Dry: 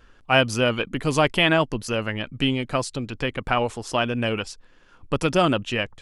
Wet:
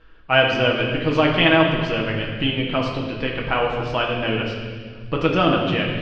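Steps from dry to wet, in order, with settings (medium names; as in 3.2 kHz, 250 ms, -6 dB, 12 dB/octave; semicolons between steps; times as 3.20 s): low-pass 4.1 kHz 24 dB/octave; peaking EQ 150 Hz -3.5 dB 0.44 oct; reverberation RT60 1.6 s, pre-delay 6 ms, DRR -1.5 dB; trim -1 dB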